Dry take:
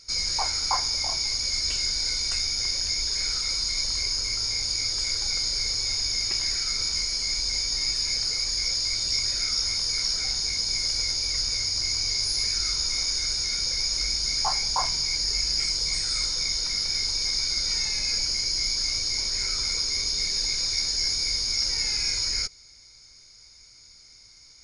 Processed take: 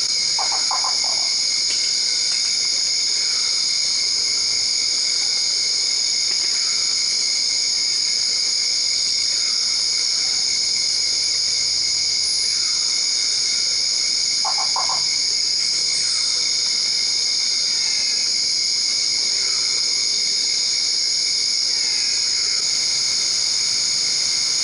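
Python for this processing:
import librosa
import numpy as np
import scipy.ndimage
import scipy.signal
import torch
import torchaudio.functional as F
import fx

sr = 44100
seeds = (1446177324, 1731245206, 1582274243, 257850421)

p1 = scipy.signal.sosfilt(scipy.signal.butter(2, 190.0, 'highpass', fs=sr, output='sos'), x)
p2 = fx.high_shelf(p1, sr, hz=8500.0, db=9.5)
p3 = p2 + fx.echo_single(p2, sr, ms=132, db=-4.0, dry=0)
y = fx.env_flatten(p3, sr, amount_pct=100)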